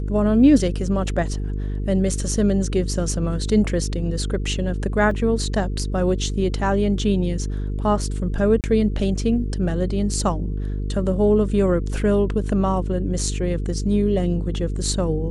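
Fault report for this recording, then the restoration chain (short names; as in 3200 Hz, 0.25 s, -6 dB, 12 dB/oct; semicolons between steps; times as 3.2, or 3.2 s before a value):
buzz 50 Hz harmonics 9 -25 dBFS
5.11 gap 2.2 ms
8.61–8.64 gap 28 ms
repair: de-hum 50 Hz, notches 9; interpolate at 5.11, 2.2 ms; interpolate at 8.61, 28 ms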